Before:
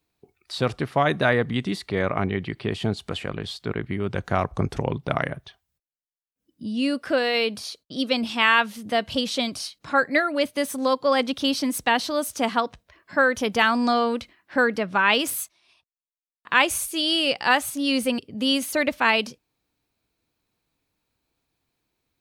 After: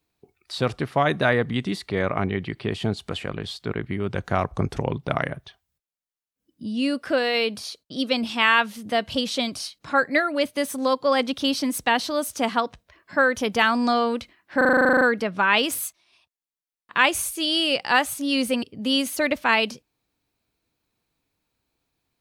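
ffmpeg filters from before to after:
-filter_complex "[0:a]asplit=12[s0][s1][s2][s3][s4][s5][s6][s7][s8][s9][s10][s11];[s0]atrim=end=14.612[s12];[s1]atrim=start=14.568:end=14.612[s13];[s2]atrim=start=14.568:end=14.612[s14];[s3]atrim=start=14.568:end=14.612[s15];[s4]atrim=start=14.568:end=14.612[s16];[s5]atrim=start=14.568:end=14.612[s17];[s6]atrim=start=14.568:end=14.612[s18];[s7]atrim=start=14.568:end=14.612[s19];[s8]atrim=start=14.568:end=14.612[s20];[s9]atrim=start=14.568:end=14.612[s21];[s10]atrim=start=14.568:end=14.612[s22];[s11]atrim=start=14.568[s23];[s12][s13]acrossfade=d=0.004:c1=hsin:c2=hsin[s24];[s24][s14]acrossfade=d=0.004:c1=hsin:c2=hsin[s25];[s25][s15]acrossfade=d=0.004:c1=hsin:c2=hsin[s26];[s26][s16]acrossfade=d=0.004:c1=hsin:c2=hsin[s27];[s27][s17]acrossfade=d=0.004:c1=hsin:c2=hsin[s28];[s28][s18]acrossfade=d=0.004:c1=hsin:c2=hsin[s29];[s29][s19]acrossfade=d=0.004:c1=hsin:c2=hsin[s30];[s30][s20]acrossfade=d=0.004:c1=hsin:c2=hsin[s31];[s31][s21]acrossfade=d=0.004:c1=hsin:c2=hsin[s32];[s32][s22]acrossfade=d=0.004:c1=hsin:c2=hsin[s33];[s33][s23]acrossfade=d=0.004:c1=hsin:c2=hsin"

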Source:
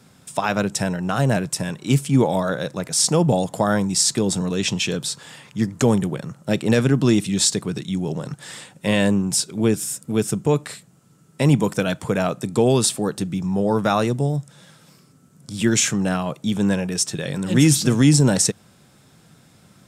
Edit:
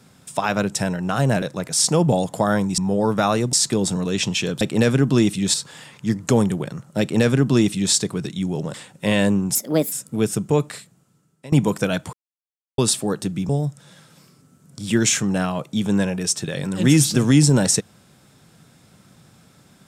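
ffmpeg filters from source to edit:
-filter_complex "[0:a]asplit=13[s0][s1][s2][s3][s4][s5][s6][s7][s8][s9][s10][s11][s12];[s0]atrim=end=1.422[s13];[s1]atrim=start=2.618:end=3.982[s14];[s2]atrim=start=13.448:end=14.202[s15];[s3]atrim=start=3.978:end=5.062[s16];[s4]atrim=start=6.518:end=7.452[s17];[s5]atrim=start=5.058:end=8.262[s18];[s6]atrim=start=8.548:end=9.364[s19];[s7]atrim=start=9.36:end=9.88,asetpts=PTS-STARTPTS,asetrate=61740,aresample=44100,atrim=end_sample=16380,asetpts=PTS-STARTPTS[s20];[s8]atrim=start=9.876:end=11.48,asetpts=PTS-STARTPTS,afade=t=out:st=0.724:d=0.88:silence=0.0749894[s21];[s9]atrim=start=11.48:end=12.09,asetpts=PTS-STARTPTS,afade=t=in:d=0.004:c=hsin:silence=0.0749894,afade=t=out:st=0.606:d=0.004:c=hsin[s22];[s10]atrim=start=12.09:end=12.74,asetpts=PTS-STARTPTS,volume=0[s23];[s11]atrim=start=12.74:end=13.452,asetpts=PTS-STARTPTS,afade=t=in:d=0.004:c=hsin[s24];[s12]atrim=start=14.198[s25];[s13][s14]acrossfade=d=0.004:c1=hsin:c2=hsin[s26];[s26][s15]acrossfade=d=0.004:c1=hsin:c2=hsin[s27];[s27][s16]acrossfade=d=0.004:c1=hsin:c2=hsin[s28];[s28][s17]acrossfade=d=0.004:c1=hsin:c2=hsin[s29];[s29][s18]acrossfade=d=0.004:c1=hsin:c2=hsin[s30];[s30][s19]acrossfade=d=0.004:c1=hsin:c2=hsin[s31];[s31][s20]acrossfade=d=0.004:c1=hsin:c2=hsin[s32];[s21][s22][s23][s24]concat=n=4:v=0:a=1[s33];[s32][s33]acrossfade=d=0.004:c1=hsin:c2=hsin[s34];[s34][s25]acrossfade=d=0.004:c1=hsin:c2=hsin"

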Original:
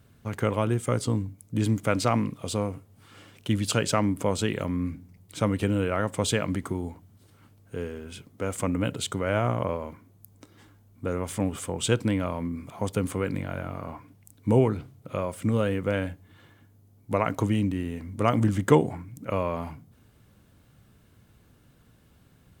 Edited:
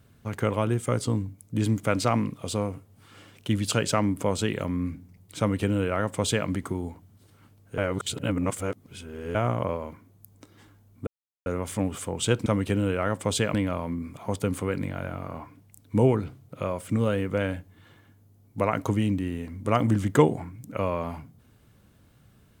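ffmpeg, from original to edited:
-filter_complex "[0:a]asplit=6[s0][s1][s2][s3][s4][s5];[s0]atrim=end=7.782[s6];[s1]atrim=start=7.778:end=9.352,asetpts=PTS-STARTPTS,areverse[s7];[s2]atrim=start=9.348:end=11.07,asetpts=PTS-STARTPTS,afade=t=out:st=1.718:d=0.004:c=hsin,apad=pad_dur=0.39[s8];[s3]atrim=start=11.07:end=12.072,asetpts=PTS-STARTPTS,afade=t=in:d=0.004:c=hsin[s9];[s4]atrim=start=5.388:end=6.472[s10];[s5]atrim=start=12.068[s11];[s6][s7]acrossfade=d=0.004:c1=hsin:c2=hsin[s12];[s8][s9]concat=n=2:v=0:a=1[s13];[s12][s13]acrossfade=d=0.004:c1=hsin:c2=hsin[s14];[s14][s10]acrossfade=d=0.004:c1=hsin:c2=hsin[s15];[s15][s11]acrossfade=d=0.004:c1=hsin:c2=hsin"

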